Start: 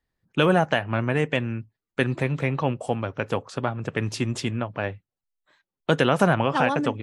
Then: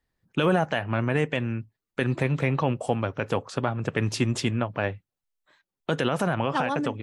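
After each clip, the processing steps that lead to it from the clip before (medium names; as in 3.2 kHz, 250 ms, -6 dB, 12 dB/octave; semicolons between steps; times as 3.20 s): peak limiter -12.5 dBFS, peak gain reduction 7 dB; gain riding within 4 dB 2 s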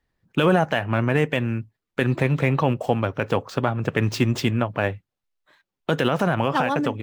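median filter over 5 samples; trim +4 dB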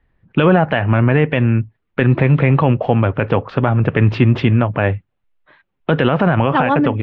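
low-pass 3 kHz 24 dB/octave; bass shelf 130 Hz +7 dB; in parallel at +2.5 dB: peak limiter -16.5 dBFS, peak gain reduction 11 dB; on the sum: trim +1.5 dB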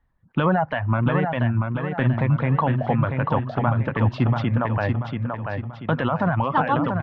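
reverb removal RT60 0.97 s; fifteen-band graphic EQ 400 Hz -8 dB, 1 kHz +5 dB, 2.5 kHz -8 dB; on a send: feedback delay 686 ms, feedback 42%, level -5 dB; on the sum: trim -5.5 dB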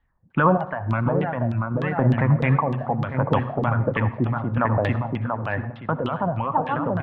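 random-step tremolo; LFO low-pass saw down 3.3 Hz 380–3600 Hz; on a send at -14 dB: reverberation RT60 0.75 s, pre-delay 57 ms; on the sum: trim +1 dB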